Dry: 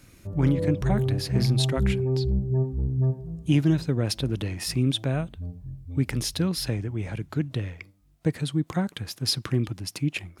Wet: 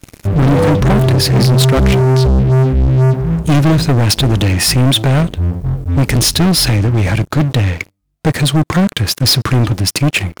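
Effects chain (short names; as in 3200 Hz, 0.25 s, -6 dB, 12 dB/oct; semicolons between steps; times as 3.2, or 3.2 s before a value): sample leveller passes 5; gain +3.5 dB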